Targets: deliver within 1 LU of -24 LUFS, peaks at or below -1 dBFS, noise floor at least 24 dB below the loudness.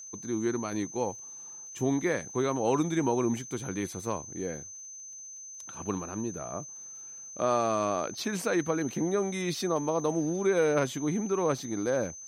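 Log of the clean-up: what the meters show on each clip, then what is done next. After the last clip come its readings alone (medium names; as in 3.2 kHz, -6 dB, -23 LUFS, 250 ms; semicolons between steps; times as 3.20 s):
tick rate 52 per s; steady tone 6.2 kHz; tone level -42 dBFS; loudness -30.0 LUFS; peak level -14.5 dBFS; loudness target -24.0 LUFS
-> de-click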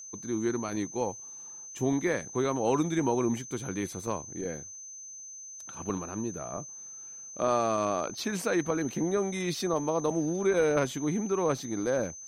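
tick rate 0.33 per s; steady tone 6.2 kHz; tone level -42 dBFS
-> band-stop 6.2 kHz, Q 30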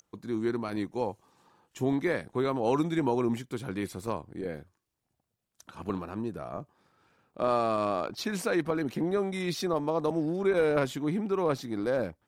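steady tone not found; loudness -30.5 LUFS; peak level -14.5 dBFS; loudness target -24.0 LUFS
-> trim +6.5 dB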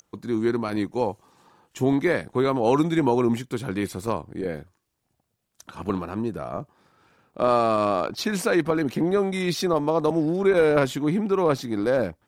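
loudness -24.0 LUFS; peak level -8.0 dBFS; noise floor -76 dBFS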